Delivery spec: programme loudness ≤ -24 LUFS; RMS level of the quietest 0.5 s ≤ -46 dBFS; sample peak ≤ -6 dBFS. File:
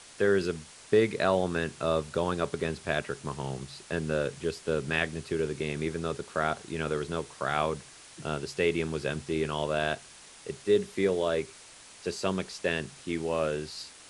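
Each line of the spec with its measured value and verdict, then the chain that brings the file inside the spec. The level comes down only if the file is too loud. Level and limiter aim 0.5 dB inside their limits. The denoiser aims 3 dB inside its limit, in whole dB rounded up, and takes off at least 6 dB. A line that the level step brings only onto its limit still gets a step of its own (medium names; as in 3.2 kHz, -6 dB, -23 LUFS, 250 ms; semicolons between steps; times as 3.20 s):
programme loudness -30.5 LUFS: pass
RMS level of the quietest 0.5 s -51 dBFS: pass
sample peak -10.5 dBFS: pass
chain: none needed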